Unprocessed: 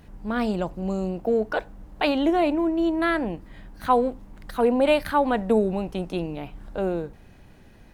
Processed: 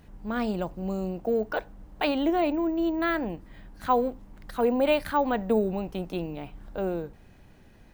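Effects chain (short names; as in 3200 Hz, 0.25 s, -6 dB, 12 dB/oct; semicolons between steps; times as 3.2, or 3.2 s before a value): careless resampling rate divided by 2×, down none, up hold; gain -3.5 dB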